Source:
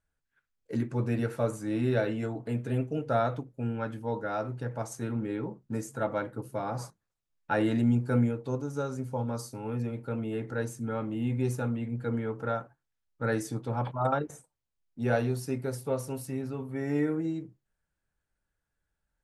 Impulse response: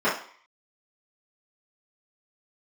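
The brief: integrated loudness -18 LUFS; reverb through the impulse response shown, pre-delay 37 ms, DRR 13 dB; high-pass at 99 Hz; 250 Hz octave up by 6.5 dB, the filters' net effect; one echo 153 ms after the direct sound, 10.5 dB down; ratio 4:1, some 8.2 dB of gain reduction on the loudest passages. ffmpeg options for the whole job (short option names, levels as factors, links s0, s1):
-filter_complex "[0:a]highpass=99,equalizer=f=250:t=o:g=7.5,acompressor=threshold=0.0562:ratio=4,aecho=1:1:153:0.299,asplit=2[s0][s1];[1:a]atrim=start_sample=2205,adelay=37[s2];[s1][s2]afir=irnorm=-1:irlink=0,volume=0.0316[s3];[s0][s3]amix=inputs=2:normalize=0,volume=4.22"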